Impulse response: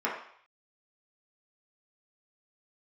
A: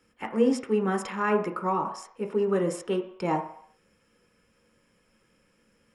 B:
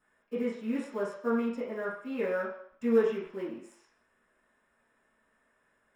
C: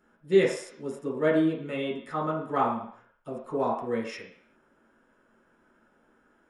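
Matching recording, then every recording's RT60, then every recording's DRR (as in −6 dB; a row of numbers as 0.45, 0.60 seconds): C; 0.60, 0.60, 0.60 seconds; 4.0, −14.5, −6.0 decibels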